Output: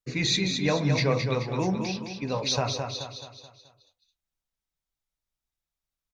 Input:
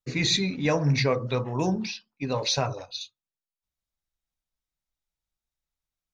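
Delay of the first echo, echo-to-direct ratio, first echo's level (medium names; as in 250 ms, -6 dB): 215 ms, -5.0 dB, -6.0 dB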